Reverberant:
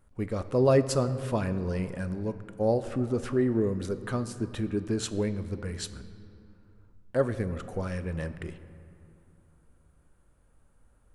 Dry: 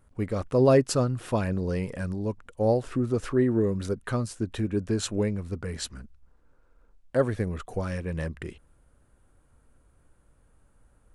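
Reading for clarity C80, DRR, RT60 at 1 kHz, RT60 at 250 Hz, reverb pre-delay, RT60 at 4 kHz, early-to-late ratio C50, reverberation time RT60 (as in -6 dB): 13.5 dB, 11.0 dB, 2.8 s, 3.2 s, 5 ms, 1.5 s, 12.5 dB, 2.7 s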